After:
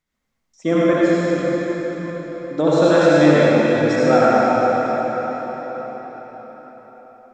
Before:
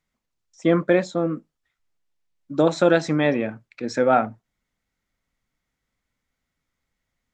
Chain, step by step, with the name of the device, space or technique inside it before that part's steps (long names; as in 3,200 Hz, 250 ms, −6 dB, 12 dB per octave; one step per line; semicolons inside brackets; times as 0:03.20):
0:00.93–0:01.33: inverse Chebyshev high-pass filter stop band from 730 Hz, stop band 80 dB
cathedral (convolution reverb RT60 5.5 s, pre-delay 55 ms, DRR −8.5 dB)
level −2 dB